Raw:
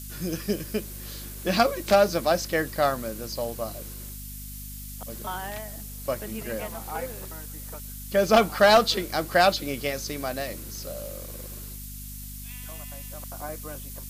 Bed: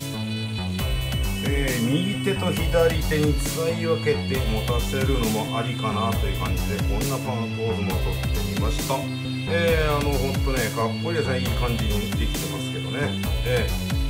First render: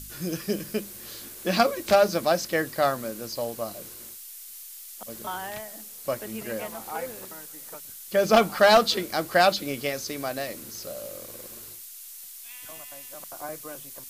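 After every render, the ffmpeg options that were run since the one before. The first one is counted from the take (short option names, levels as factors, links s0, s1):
-af "bandreject=f=50:t=h:w=4,bandreject=f=100:t=h:w=4,bandreject=f=150:t=h:w=4,bandreject=f=200:t=h:w=4,bandreject=f=250:t=h:w=4"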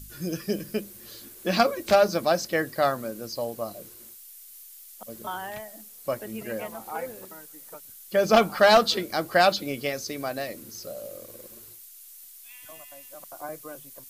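-af "afftdn=nr=7:nf=-43"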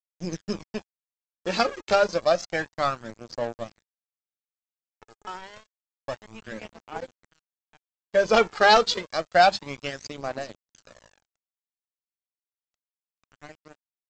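-af "aresample=16000,aeval=exprs='sgn(val(0))*max(abs(val(0))-0.0178,0)':c=same,aresample=44100,aphaser=in_gain=1:out_gain=1:delay=2.5:decay=0.49:speed=0.29:type=triangular"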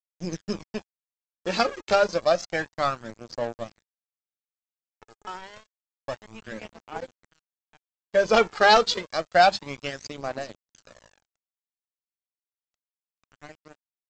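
-af anull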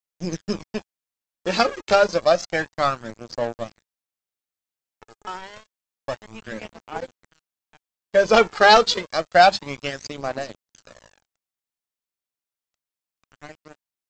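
-af "volume=1.58"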